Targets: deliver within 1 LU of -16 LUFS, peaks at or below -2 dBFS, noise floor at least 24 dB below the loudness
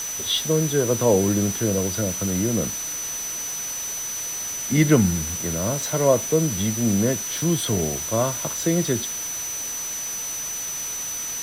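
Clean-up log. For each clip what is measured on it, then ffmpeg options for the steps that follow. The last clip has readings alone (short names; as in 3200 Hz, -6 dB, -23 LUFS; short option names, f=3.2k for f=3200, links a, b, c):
steady tone 6000 Hz; tone level -28 dBFS; noise floor -30 dBFS; noise floor target -47 dBFS; loudness -22.5 LUFS; peak -4.0 dBFS; loudness target -16.0 LUFS
-> -af "bandreject=f=6k:w=30"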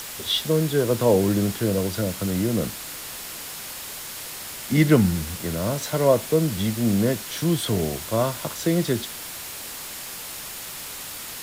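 steady tone none; noise floor -36 dBFS; noise floor target -49 dBFS
-> -af "afftdn=nr=13:nf=-36"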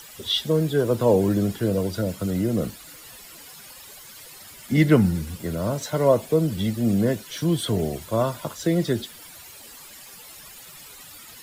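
noise floor -44 dBFS; noise floor target -47 dBFS
-> -af "afftdn=nr=6:nf=-44"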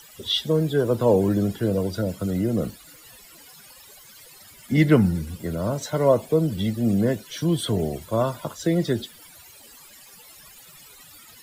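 noise floor -48 dBFS; loudness -23.0 LUFS; peak -4.0 dBFS; loudness target -16.0 LUFS
-> -af "volume=7dB,alimiter=limit=-2dB:level=0:latency=1"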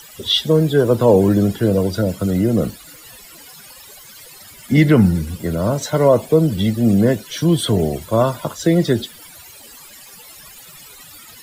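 loudness -16.5 LUFS; peak -2.0 dBFS; noise floor -41 dBFS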